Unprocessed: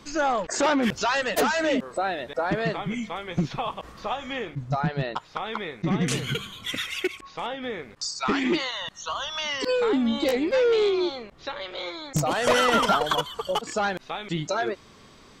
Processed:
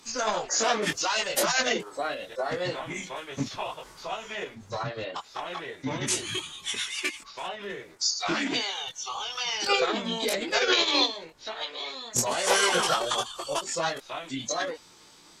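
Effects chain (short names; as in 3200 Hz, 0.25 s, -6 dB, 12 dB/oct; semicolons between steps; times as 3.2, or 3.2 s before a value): chorus voices 4, 0.45 Hz, delay 21 ms, depth 3.5 ms; formant-preserving pitch shift -4 st; tone controls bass -10 dB, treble +11 dB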